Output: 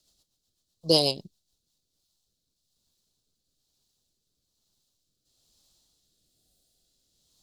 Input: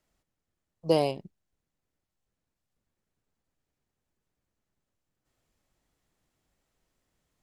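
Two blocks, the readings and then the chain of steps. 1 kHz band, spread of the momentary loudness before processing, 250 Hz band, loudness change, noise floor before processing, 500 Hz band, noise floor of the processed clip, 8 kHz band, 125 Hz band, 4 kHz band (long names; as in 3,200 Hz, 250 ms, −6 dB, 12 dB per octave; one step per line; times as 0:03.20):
−3.0 dB, 16 LU, +1.5 dB, +2.5 dB, −85 dBFS, 0.0 dB, −80 dBFS, +12.5 dB, +1.5 dB, +15.0 dB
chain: rotating-speaker cabinet horn 8 Hz, later 1.1 Hz, at 0:01.17
healed spectral selection 0:06.14–0:07.06, 780–8,000 Hz
high shelf with overshoot 2,900 Hz +12 dB, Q 3
level +2.5 dB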